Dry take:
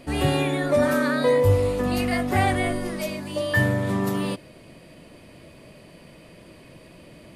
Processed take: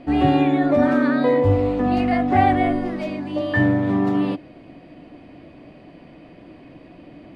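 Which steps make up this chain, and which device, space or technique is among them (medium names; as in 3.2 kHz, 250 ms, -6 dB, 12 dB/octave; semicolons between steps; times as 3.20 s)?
inside a cardboard box (low-pass 3 kHz 12 dB/octave; small resonant body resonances 290/730 Hz, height 11 dB, ringing for 45 ms)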